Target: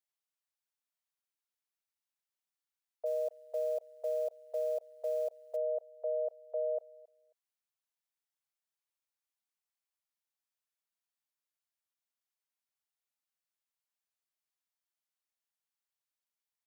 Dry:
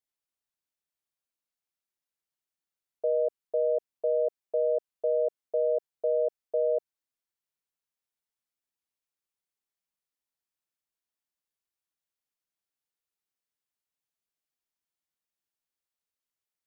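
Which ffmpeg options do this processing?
-filter_complex "[0:a]highpass=f=600:w=0.5412,highpass=f=600:w=1.3066,aecho=1:1:270|540:0.075|0.0135,asplit=3[s0][s1][s2];[s0]afade=t=out:st=3.05:d=0.02[s3];[s1]acrusher=bits=7:mode=log:mix=0:aa=0.000001,afade=t=in:st=3.05:d=0.02,afade=t=out:st=5.55:d=0.02[s4];[s2]afade=t=in:st=5.55:d=0.02[s5];[s3][s4][s5]amix=inputs=3:normalize=0,volume=0.708"

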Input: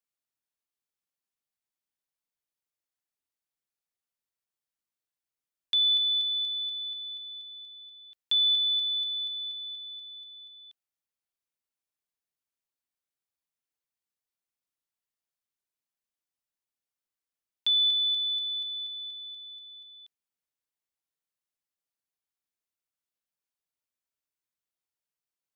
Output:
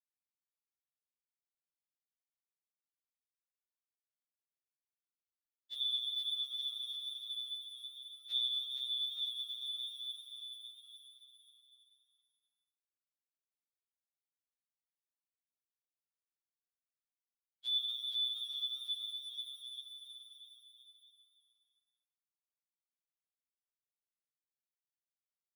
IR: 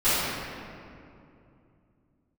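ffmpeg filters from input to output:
-filter_complex "[0:a]highshelf=f=3300:g=9,asplit=2[s0][s1];[s1]aecho=0:1:802|1604|2406|3208:0.168|0.0755|0.034|0.0153[s2];[s0][s2]amix=inputs=2:normalize=0,aeval=exprs='sgn(val(0))*max(abs(val(0))-0.00841,0)':c=same,afftfilt=real='hypot(re,im)*cos(2*PI*random(0))':imag='hypot(re,im)*sin(2*PI*random(1))':win_size=512:overlap=0.75,asplit=2[s3][s4];[s4]aecho=0:1:470|869.5|1209|1498|1743:0.631|0.398|0.251|0.158|0.1[s5];[s3][s5]amix=inputs=2:normalize=0,afftfilt=real='re*2.45*eq(mod(b,6),0)':imag='im*2.45*eq(mod(b,6),0)':win_size=2048:overlap=0.75,volume=0.398"

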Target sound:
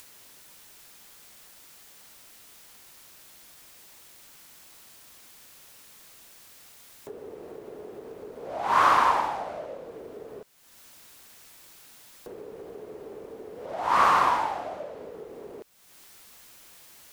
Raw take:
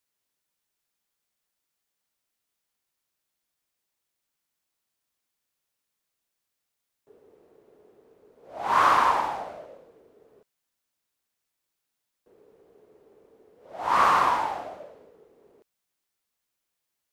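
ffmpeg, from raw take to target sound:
-af "acompressor=mode=upward:threshold=0.0447:ratio=2.5"

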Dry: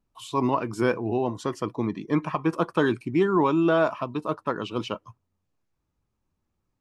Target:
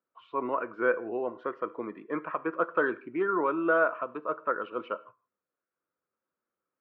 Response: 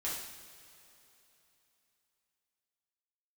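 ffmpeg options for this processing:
-filter_complex "[0:a]highpass=390,equalizer=f=510:t=q:w=4:g=7,equalizer=f=830:t=q:w=4:g=-7,equalizer=f=1400:t=q:w=4:g=10,lowpass=f=2200:w=0.5412,lowpass=f=2200:w=1.3066,asplit=2[s0][s1];[1:a]atrim=start_sample=2205,afade=t=out:st=0.22:d=0.01,atrim=end_sample=10143[s2];[s1][s2]afir=irnorm=-1:irlink=0,volume=0.141[s3];[s0][s3]amix=inputs=2:normalize=0,volume=0.531"

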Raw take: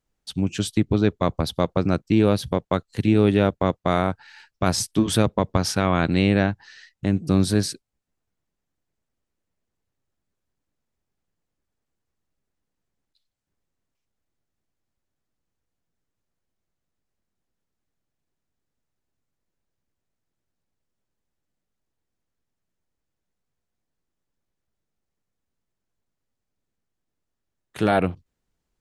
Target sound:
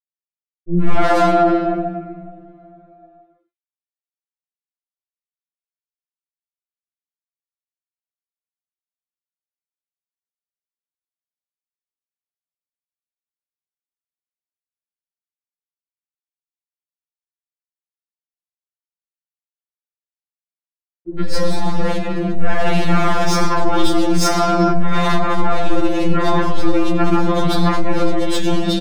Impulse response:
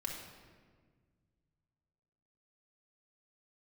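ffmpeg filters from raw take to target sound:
-filter_complex "[0:a]areverse,acrusher=bits=5:mix=0:aa=0.000001,aecho=1:1:3:0.61[s0];[1:a]atrim=start_sample=2205[s1];[s0][s1]afir=irnorm=-1:irlink=0,adynamicsmooth=sensitivity=2.5:basefreq=3200,aeval=exprs='0.631*(cos(1*acos(clip(val(0)/0.631,-1,1)))-cos(1*PI/2))+0.224*(cos(4*acos(clip(val(0)/0.631,-1,1)))-cos(4*PI/2))':c=same,acrossover=split=370|2900[s2][s3][s4];[s3]adelay=110[s5];[s4]adelay=170[s6];[s2][s5][s6]amix=inputs=3:normalize=0,acompressor=threshold=0.0447:ratio=6,alimiter=level_in=21.1:limit=0.891:release=50:level=0:latency=1,afftfilt=real='re*2.83*eq(mod(b,8),0)':imag='im*2.83*eq(mod(b,8),0)':win_size=2048:overlap=0.75,volume=0.75"

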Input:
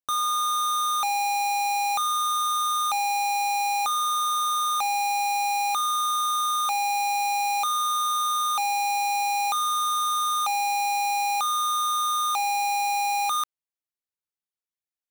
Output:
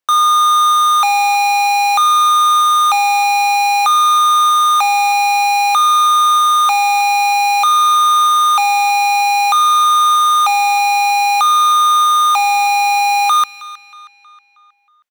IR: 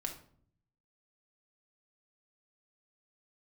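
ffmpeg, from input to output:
-filter_complex "[0:a]equalizer=f=1400:w=0.31:g=9.5,acrossover=split=600|1100[s0][s1][s2];[s0]alimiter=level_in=3.76:limit=0.0631:level=0:latency=1,volume=0.266[s3];[s2]asplit=2[s4][s5];[s5]adelay=317,lowpass=f=4500:p=1,volume=0.2,asplit=2[s6][s7];[s7]adelay=317,lowpass=f=4500:p=1,volume=0.53,asplit=2[s8][s9];[s9]adelay=317,lowpass=f=4500:p=1,volume=0.53,asplit=2[s10][s11];[s11]adelay=317,lowpass=f=4500:p=1,volume=0.53,asplit=2[s12][s13];[s13]adelay=317,lowpass=f=4500:p=1,volume=0.53[s14];[s4][s6][s8][s10][s12][s14]amix=inputs=6:normalize=0[s15];[s3][s1][s15]amix=inputs=3:normalize=0,volume=1.78"

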